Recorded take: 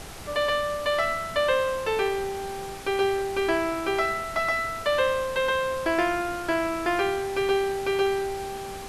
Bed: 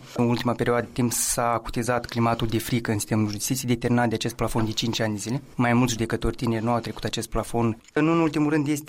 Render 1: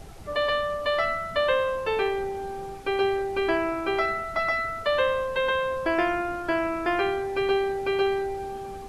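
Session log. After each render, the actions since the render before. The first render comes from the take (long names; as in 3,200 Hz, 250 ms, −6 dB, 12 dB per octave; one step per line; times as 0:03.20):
broadband denoise 11 dB, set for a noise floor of −37 dBFS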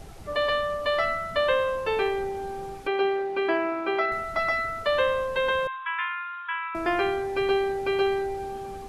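0:02.87–0:04.12: three-way crossover with the lows and the highs turned down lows −21 dB, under 180 Hz, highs −14 dB, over 4,200 Hz
0:05.67–0:06.75: linear-phase brick-wall band-pass 950–3,900 Hz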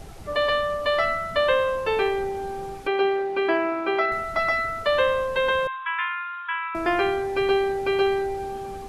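level +2.5 dB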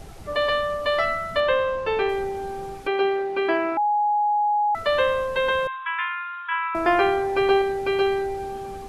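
0:01.40–0:02.09: high-frequency loss of the air 82 metres
0:03.77–0:04.75: beep over 833 Hz −18 dBFS
0:06.51–0:07.62: dynamic equaliser 840 Hz, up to +5 dB, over −37 dBFS, Q 0.72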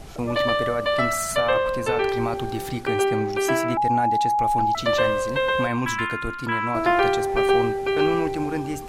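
mix in bed −5.5 dB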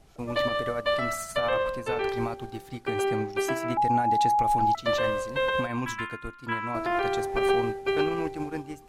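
brickwall limiter −14.5 dBFS, peak gain reduction 6.5 dB
expander for the loud parts 2.5 to 1, over −31 dBFS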